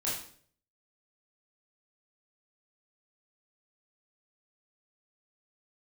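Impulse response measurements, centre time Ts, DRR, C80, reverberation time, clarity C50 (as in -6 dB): 46 ms, -7.5 dB, 7.5 dB, 0.55 s, 3.0 dB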